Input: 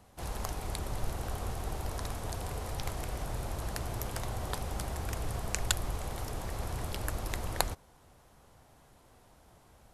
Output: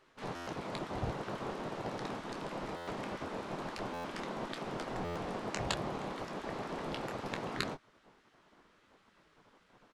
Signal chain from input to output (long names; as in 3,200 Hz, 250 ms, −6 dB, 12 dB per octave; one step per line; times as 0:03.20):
low-pass filter 3,800 Hz 12 dB per octave
low-shelf EQ 130 Hz −6 dB
ambience of single reflections 15 ms −11 dB, 26 ms −9 dB
gate on every frequency bin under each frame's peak −10 dB weak
tilt shelving filter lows +4 dB, about 710 Hz
buffer that repeats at 0:00.35/0:02.76/0:03.93/0:05.04, samples 512, times 9
level +4 dB